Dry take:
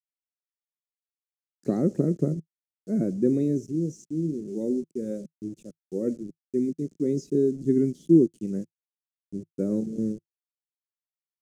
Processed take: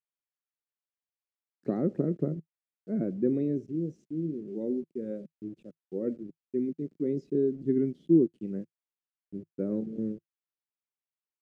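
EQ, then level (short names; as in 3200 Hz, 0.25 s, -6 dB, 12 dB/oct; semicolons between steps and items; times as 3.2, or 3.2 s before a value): air absorption 470 m; tilt +2 dB/oct; 0.0 dB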